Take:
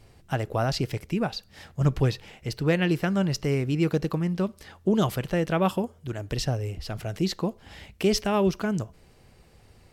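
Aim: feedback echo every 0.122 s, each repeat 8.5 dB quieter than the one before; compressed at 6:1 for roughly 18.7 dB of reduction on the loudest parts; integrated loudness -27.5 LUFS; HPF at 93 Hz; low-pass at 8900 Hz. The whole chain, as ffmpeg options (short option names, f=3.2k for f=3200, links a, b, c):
-af "highpass=93,lowpass=8.9k,acompressor=threshold=-39dB:ratio=6,aecho=1:1:122|244|366|488:0.376|0.143|0.0543|0.0206,volume=14.5dB"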